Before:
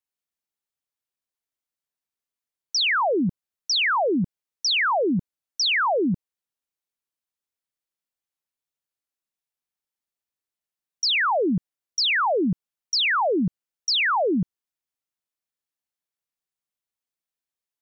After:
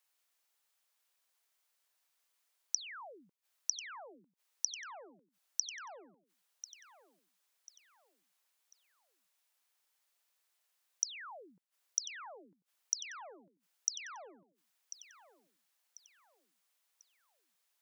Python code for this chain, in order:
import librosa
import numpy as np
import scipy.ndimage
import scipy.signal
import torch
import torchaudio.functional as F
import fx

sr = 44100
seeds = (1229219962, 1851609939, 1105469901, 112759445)

y = fx.gate_flip(x, sr, shuts_db=-28.0, range_db=-37)
y = scipy.signal.sosfilt(scipy.signal.butter(2, 610.0, 'highpass', fs=sr, output='sos'), y)
y = fx.echo_feedback(y, sr, ms=1043, feedback_pct=36, wet_db=-14)
y = F.gain(torch.from_numpy(y), 11.0).numpy()